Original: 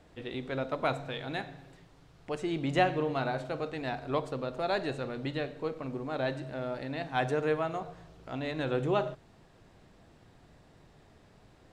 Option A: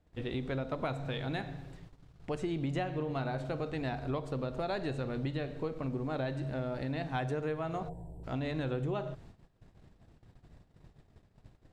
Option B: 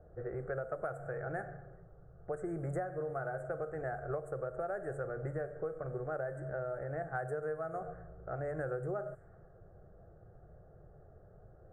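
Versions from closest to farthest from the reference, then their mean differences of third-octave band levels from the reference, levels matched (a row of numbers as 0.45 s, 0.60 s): A, B; 3.5 dB, 8.0 dB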